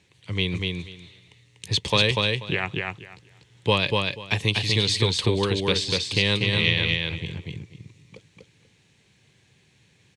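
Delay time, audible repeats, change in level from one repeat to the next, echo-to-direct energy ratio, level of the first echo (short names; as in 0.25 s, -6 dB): 0.243 s, 3, -15.0 dB, -3.0 dB, -3.0 dB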